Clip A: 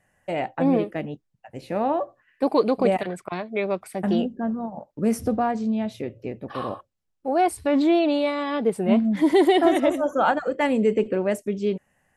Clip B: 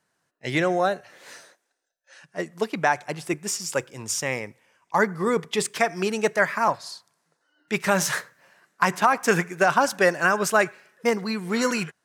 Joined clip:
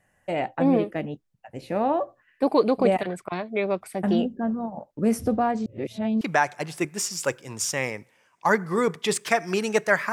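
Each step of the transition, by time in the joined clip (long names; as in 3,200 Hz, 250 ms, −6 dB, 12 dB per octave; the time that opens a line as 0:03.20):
clip A
0:05.66–0:06.21: reverse
0:06.21: continue with clip B from 0:02.70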